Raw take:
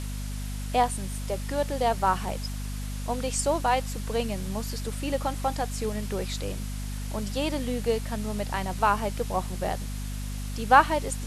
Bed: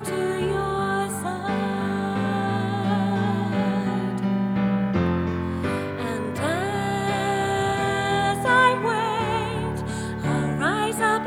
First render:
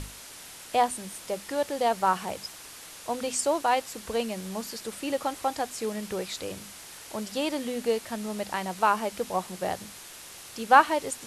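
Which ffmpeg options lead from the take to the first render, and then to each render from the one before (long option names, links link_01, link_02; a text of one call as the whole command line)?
ffmpeg -i in.wav -af "bandreject=frequency=50:width_type=h:width=6,bandreject=frequency=100:width_type=h:width=6,bandreject=frequency=150:width_type=h:width=6,bandreject=frequency=200:width_type=h:width=6,bandreject=frequency=250:width_type=h:width=6" out.wav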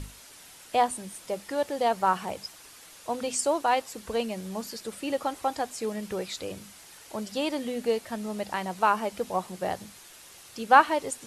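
ffmpeg -i in.wav -af "afftdn=noise_reduction=6:noise_floor=-45" out.wav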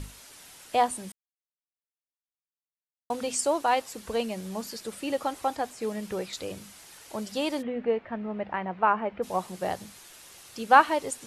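ffmpeg -i in.wav -filter_complex "[0:a]asettb=1/sr,asplit=3[link_01][link_02][link_03];[link_01]atrim=end=5.504[link_04];[link_02]atrim=start=5.5:end=6.33,asetpts=PTS-STARTPTS,afade=type=in:duration=0.004:curve=qsin,afade=type=out:start_time=0.826:duration=0.004:curve=qsin,acrossover=split=2600[link_05][link_06];[link_06]acompressor=threshold=-44dB:ratio=4:attack=1:release=60[link_07];[link_05][link_07]amix=inputs=2:normalize=0[link_08];[link_03]atrim=start=6.326[link_09];[link_04][link_08]acrossfade=duration=0.004:curve1=hsin:curve2=qsin[link_10];[link_10][link_09]acrossfade=duration=0.004:curve1=qsin:curve2=hsin,asplit=3[link_11][link_12][link_13];[link_11]afade=type=out:start_time=7.61:duration=0.02[link_14];[link_12]lowpass=frequency=2400:width=0.5412,lowpass=frequency=2400:width=1.3066,afade=type=in:start_time=7.61:duration=0.02,afade=type=out:start_time=9.22:duration=0.02[link_15];[link_13]afade=type=in:start_time=9.22:duration=0.02[link_16];[link_14][link_15][link_16]amix=inputs=3:normalize=0,asplit=3[link_17][link_18][link_19];[link_17]atrim=end=1.12,asetpts=PTS-STARTPTS,afade=type=out:start_time=1.116:duration=0.004:curve=hsin[link_20];[link_18]atrim=start=1.12:end=3.1,asetpts=PTS-STARTPTS,volume=0[link_21];[link_19]atrim=start=3.1,asetpts=PTS-STARTPTS,afade=type=in:duration=0.004:curve=hsin[link_22];[link_20][link_21][link_22]concat=n=3:v=0:a=1" out.wav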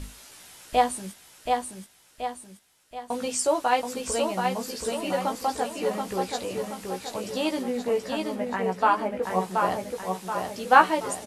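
ffmpeg -i in.wav -filter_complex "[0:a]asplit=2[link_01][link_02];[link_02]adelay=16,volume=-4dB[link_03];[link_01][link_03]amix=inputs=2:normalize=0,asplit=2[link_04][link_05];[link_05]aecho=0:1:728|1456|2184|2912|3640|4368:0.631|0.303|0.145|0.0698|0.0335|0.0161[link_06];[link_04][link_06]amix=inputs=2:normalize=0" out.wav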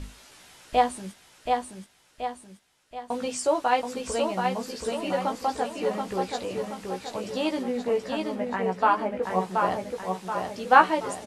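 ffmpeg -i in.wav -af "lowpass=12000,highshelf=frequency=7000:gain=-9" out.wav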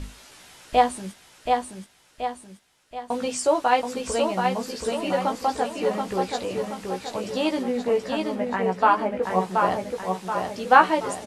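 ffmpeg -i in.wav -af "volume=3dB,alimiter=limit=-3dB:level=0:latency=1" out.wav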